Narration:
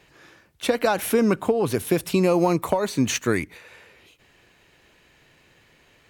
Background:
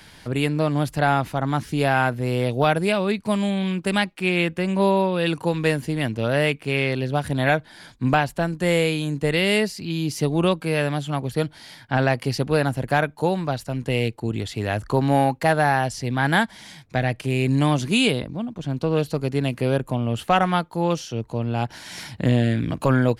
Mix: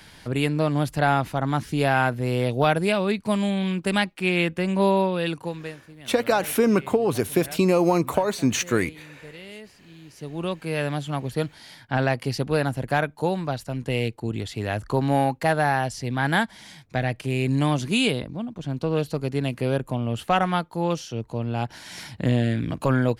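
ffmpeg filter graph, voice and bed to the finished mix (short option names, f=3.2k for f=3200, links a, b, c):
-filter_complex "[0:a]adelay=5450,volume=0dB[a];[1:a]volume=18dB,afade=t=out:st=5.03:d=0.74:silence=0.0944061,afade=t=in:st=10.1:d=0.83:silence=0.112202[b];[a][b]amix=inputs=2:normalize=0"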